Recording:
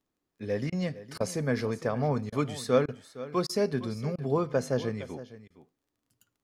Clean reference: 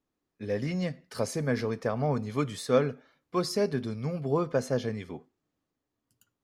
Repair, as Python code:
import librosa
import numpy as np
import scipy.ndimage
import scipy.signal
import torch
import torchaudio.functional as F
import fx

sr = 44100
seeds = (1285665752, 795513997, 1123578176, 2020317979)

y = fx.fix_declick_ar(x, sr, threshold=6.5)
y = fx.fix_interpolate(y, sr, at_s=(0.7, 1.18, 2.3, 2.86, 3.47, 4.16, 5.48), length_ms=22.0)
y = fx.fix_echo_inverse(y, sr, delay_ms=462, level_db=-15.5)